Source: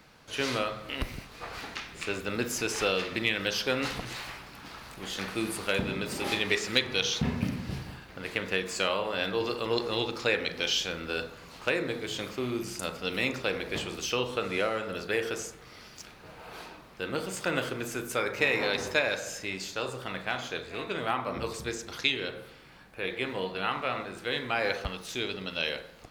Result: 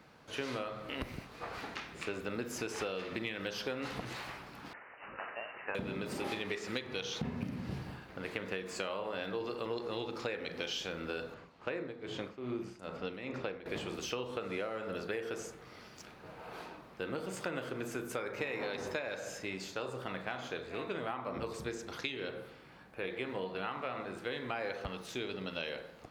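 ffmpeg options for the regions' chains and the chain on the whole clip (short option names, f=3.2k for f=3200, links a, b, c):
-filter_complex "[0:a]asettb=1/sr,asplit=3[a][b][c];[a]atrim=end=4.734[d];[b]atrim=start=4.73:end=5.75,asetpts=PTS-STARTPTS,afade=t=in:d=0.004:c=qsin,afade=t=out:st=1.016:d=0.004:c=qsin,bandpass=f=2.4k:t=q:w=0.51,lowpass=f=2.6k:t=q:w=0.5098,lowpass=f=2.6k:t=q:w=0.6013,lowpass=f=2.6k:t=q:w=0.9,lowpass=f=2.6k:t=q:w=2.563,afreqshift=-3100[e];[c]atrim=start=5.746[f];[d][e]acrossfade=d=0.004:c1=hsin:c2=qsin[g];[g][f]acrossfade=d=0.004:c1=qsin:c2=hsin,asettb=1/sr,asplit=3[h][i][j];[h]atrim=end=11.344[k];[i]atrim=start=11.34:end=13.66,asetpts=PTS-STARTPTS,afade=t=in:d=0.004:c=qsin,afade=t=out:st=2.316:d=0.004:c=qsin,aemphasis=mode=reproduction:type=50fm,tremolo=f=2.4:d=0.76[l];[j]atrim=start=13.656[m];[k][l]acrossfade=d=0.004:c1=hsin:c2=qsin[n];[n][m]acrossfade=d=0.004:c1=qsin:c2=hsin,highpass=f=110:p=1,highshelf=f=2.1k:g=-9,acompressor=threshold=-34dB:ratio=6"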